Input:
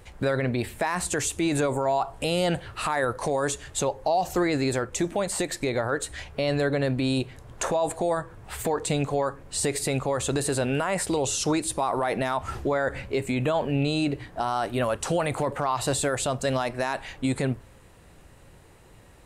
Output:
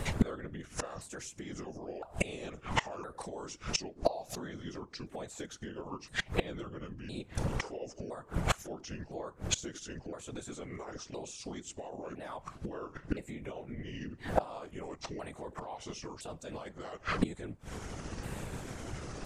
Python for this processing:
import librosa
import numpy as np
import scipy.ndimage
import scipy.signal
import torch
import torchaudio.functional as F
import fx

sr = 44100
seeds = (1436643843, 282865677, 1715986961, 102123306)

p1 = fx.pitch_ramps(x, sr, semitones=-7.5, every_ms=1013)
p2 = fx.rider(p1, sr, range_db=10, speed_s=0.5)
p3 = p1 + F.gain(torch.from_numpy(p2), 1.0).numpy()
p4 = fx.gate_flip(p3, sr, shuts_db=-19.0, range_db=-28)
p5 = fx.whisperise(p4, sr, seeds[0])
y = F.gain(torch.from_numpy(p5), 5.5).numpy()